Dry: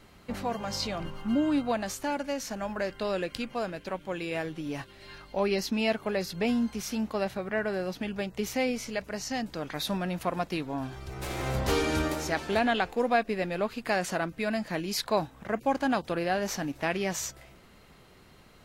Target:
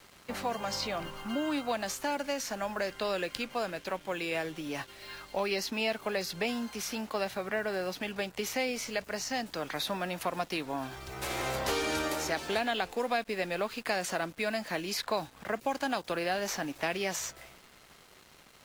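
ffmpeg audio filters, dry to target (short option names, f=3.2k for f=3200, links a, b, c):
-filter_complex "[0:a]lowshelf=f=350:g=-10,acrossover=split=290|850|2800[a][b][c][d];[a]acompressor=threshold=-45dB:ratio=4[e];[b]acompressor=threshold=-36dB:ratio=4[f];[c]acompressor=threshold=-40dB:ratio=4[g];[d]acompressor=threshold=-39dB:ratio=4[h];[e][f][g][h]amix=inputs=4:normalize=0,acrusher=bits=8:mix=0:aa=0.5,volume=3.5dB"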